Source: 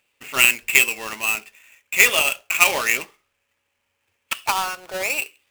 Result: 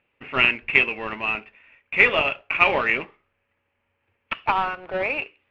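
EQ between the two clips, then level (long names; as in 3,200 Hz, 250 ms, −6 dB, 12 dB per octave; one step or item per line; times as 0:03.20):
low-pass filter 2,600 Hz 24 dB per octave
low-shelf EQ 490 Hz +6.5 dB
0.0 dB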